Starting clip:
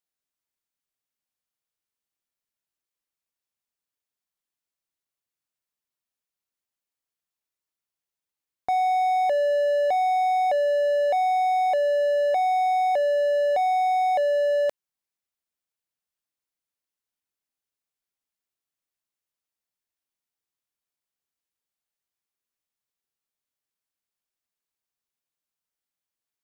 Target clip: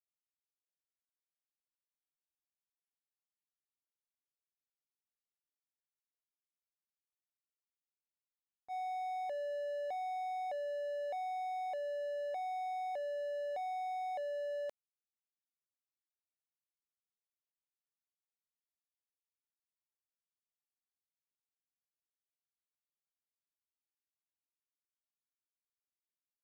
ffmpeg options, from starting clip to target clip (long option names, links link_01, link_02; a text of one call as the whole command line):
ffmpeg -i in.wav -af "agate=range=-33dB:threshold=-9dB:ratio=3:detection=peak,volume=3dB" out.wav